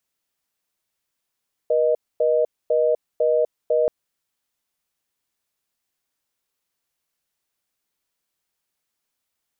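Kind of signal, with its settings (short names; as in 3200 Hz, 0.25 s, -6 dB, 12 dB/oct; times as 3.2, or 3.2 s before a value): call progress tone reorder tone, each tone -18.5 dBFS 2.18 s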